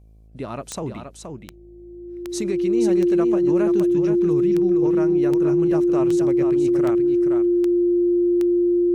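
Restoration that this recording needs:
click removal
hum removal 53.9 Hz, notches 14
notch filter 350 Hz, Q 30
echo removal 473 ms −6.5 dB

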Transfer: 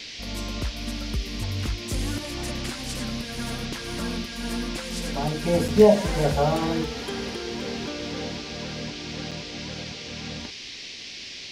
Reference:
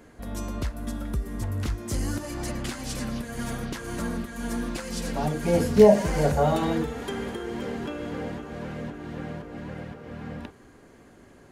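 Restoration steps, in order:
repair the gap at 0:05.68/0:09.31, 5.4 ms
noise reduction from a noise print 12 dB

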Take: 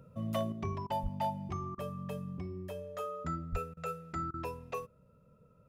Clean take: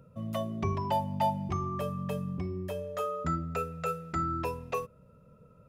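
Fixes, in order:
clipped peaks rebuilt −25 dBFS
0:01.02–0:01.14: high-pass filter 140 Hz 24 dB per octave
0:03.51–0:03.63: high-pass filter 140 Hz 24 dB per octave
repair the gap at 0:00.87/0:01.75/0:03.74/0:04.31, 28 ms
0:00.52: level correction +6 dB

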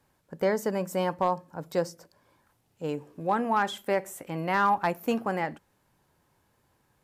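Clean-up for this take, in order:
clipped peaks rebuilt −15.5 dBFS

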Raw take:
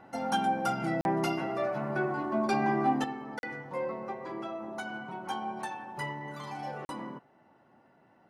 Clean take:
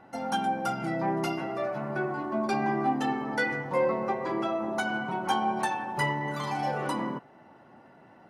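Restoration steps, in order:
repair the gap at 0:01.01/0:03.39/0:06.85, 41 ms
level correction +8.5 dB, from 0:03.04

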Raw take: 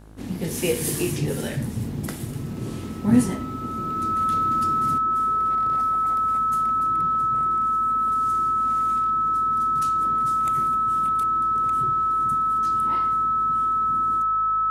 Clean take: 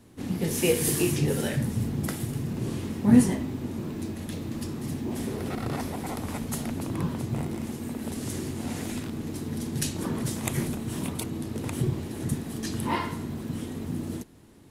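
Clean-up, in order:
hum removal 52.9 Hz, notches 32
notch filter 1,300 Hz, Q 30
level correction +9.5 dB, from 0:04.98

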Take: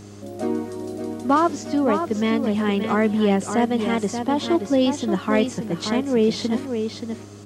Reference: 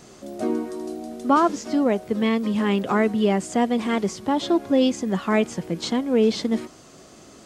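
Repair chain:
clipped peaks rebuilt −8 dBFS
hum removal 101.9 Hz, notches 4
echo removal 578 ms −7 dB

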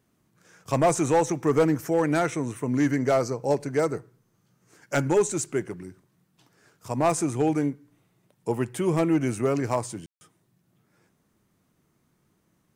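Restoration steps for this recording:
clipped peaks rebuilt −14.5 dBFS
ambience match 0:10.06–0:10.21

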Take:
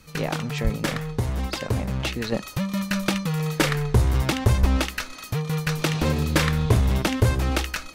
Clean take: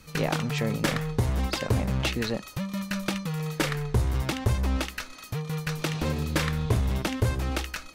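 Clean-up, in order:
high-pass at the plosives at 0:00.63/0:04.60
level 0 dB, from 0:02.32 −5.5 dB

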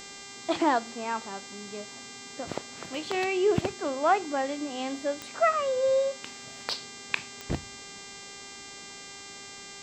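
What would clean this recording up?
click removal
hum removal 397.4 Hz, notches 20
notch filter 2,100 Hz, Q 30

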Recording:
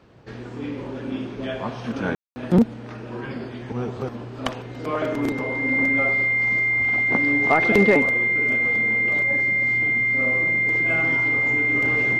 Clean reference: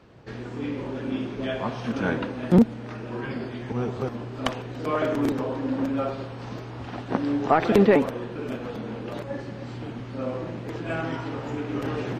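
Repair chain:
clipped peaks rebuilt −7 dBFS
notch filter 2,100 Hz, Q 30
ambience match 0:02.15–0:02.36

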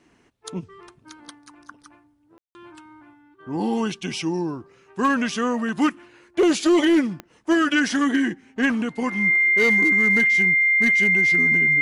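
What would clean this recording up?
clipped peaks rebuilt −12.5 dBFS
click removal
notch filter 2,100 Hz, Q 30
ambience match 0:02.38–0:02.55

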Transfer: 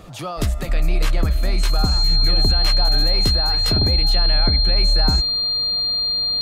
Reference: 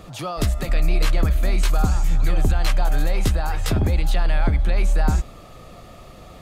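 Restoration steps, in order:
notch filter 4,200 Hz, Q 30

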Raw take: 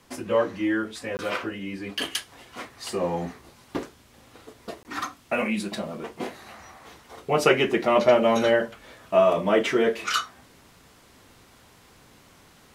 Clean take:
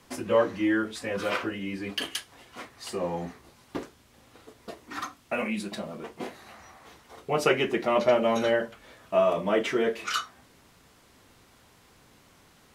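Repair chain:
repair the gap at 0:01.17/0:04.83, 19 ms
level correction −4 dB, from 0:01.99

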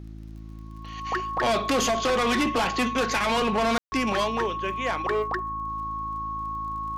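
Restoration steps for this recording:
click removal
hum removal 54.2 Hz, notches 6
notch filter 1,100 Hz, Q 30
ambience match 0:03.78–0:03.92

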